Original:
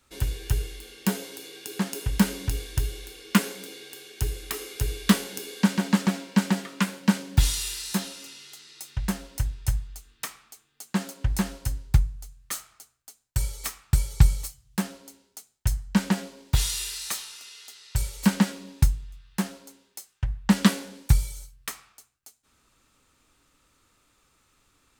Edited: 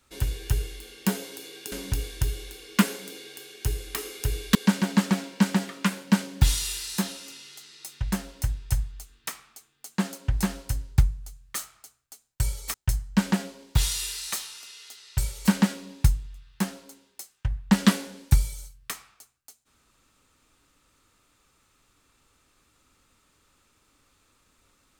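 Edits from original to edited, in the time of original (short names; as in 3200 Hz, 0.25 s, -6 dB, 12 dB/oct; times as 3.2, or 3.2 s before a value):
1.72–2.28 cut
5.11–5.51 cut
13.7–15.52 cut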